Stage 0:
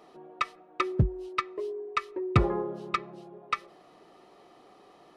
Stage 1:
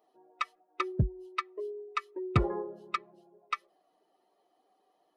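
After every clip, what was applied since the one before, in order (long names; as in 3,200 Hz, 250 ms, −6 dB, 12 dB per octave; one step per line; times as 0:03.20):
spectral dynamics exaggerated over time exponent 1.5
level −2.5 dB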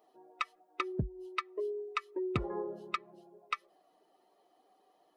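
downward compressor 5 to 1, threshold −34 dBFS, peak gain reduction 14 dB
level +3 dB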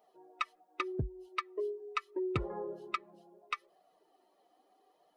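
flanger 0.78 Hz, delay 1.3 ms, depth 2.9 ms, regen −42%
level +3 dB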